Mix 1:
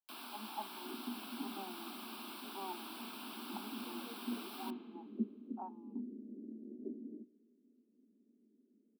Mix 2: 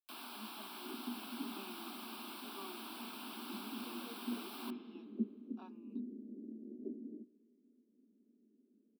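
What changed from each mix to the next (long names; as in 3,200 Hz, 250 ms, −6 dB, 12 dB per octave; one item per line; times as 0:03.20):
speech: remove low-pass with resonance 830 Hz, resonance Q 9.4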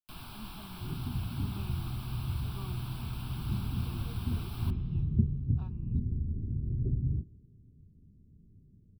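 master: remove Butterworth high-pass 220 Hz 96 dB per octave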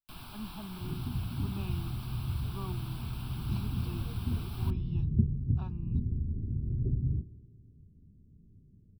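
speech +6.0 dB
first sound: send −8.5 dB
second sound: send +6.0 dB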